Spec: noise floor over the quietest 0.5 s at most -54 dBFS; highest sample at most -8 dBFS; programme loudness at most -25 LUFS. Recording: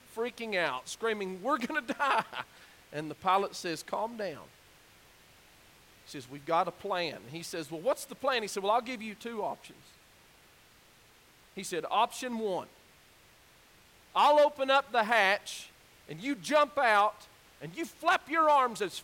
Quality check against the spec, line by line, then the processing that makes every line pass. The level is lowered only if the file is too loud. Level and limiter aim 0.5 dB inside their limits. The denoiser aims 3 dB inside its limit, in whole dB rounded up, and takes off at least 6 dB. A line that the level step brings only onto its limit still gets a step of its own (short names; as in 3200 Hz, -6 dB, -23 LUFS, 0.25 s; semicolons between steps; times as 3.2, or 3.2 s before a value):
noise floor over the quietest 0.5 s -60 dBFS: OK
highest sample -12.5 dBFS: OK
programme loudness -30.5 LUFS: OK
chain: none